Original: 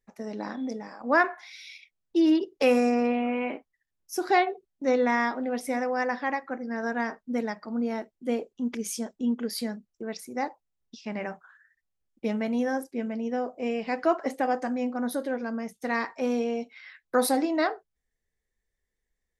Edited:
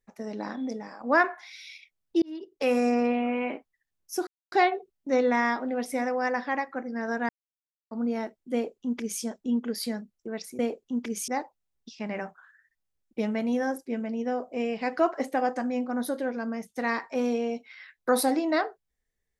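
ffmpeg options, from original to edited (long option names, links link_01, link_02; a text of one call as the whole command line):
ffmpeg -i in.wav -filter_complex "[0:a]asplit=7[link_01][link_02][link_03][link_04][link_05][link_06][link_07];[link_01]atrim=end=2.22,asetpts=PTS-STARTPTS,afade=type=out:start_time=2.216:duration=0.004:curve=hsin[link_08];[link_02]atrim=start=2.22:end=4.27,asetpts=PTS-STARTPTS,afade=type=in:duration=0.7,afade=type=out:start_time=2.046:duration=0.004:curve=hsin,apad=pad_dur=0.25[link_09];[link_03]atrim=start=4.27:end=7.04,asetpts=PTS-STARTPTS,afade=type=in:duration=0.004:curve=hsin,afade=type=out:start_time=2.766:duration=0.004:curve=hsin[link_10];[link_04]atrim=start=7.04:end=7.66,asetpts=PTS-STARTPTS,volume=0[link_11];[link_05]atrim=start=7.66:end=10.342,asetpts=PTS-STARTPTS,afade=type=in:duration=0.004:curve=hsin[link_12];[link_06]atrim=start=8.278:end=8.972[link_13];[link_07]atrim=start=10.338[link_14];[link_08][link_09][link_10][link_11][link_12]concat=n=5:v=0:a=1[link_15];[link_15][link_13]acrossfade=duration=0.004:curve1=hsin:curve2=hsin[link_16];[link_16][link_14]acrossfade=duration=0.004:curve1=hsin:curve2=hsin" out.wav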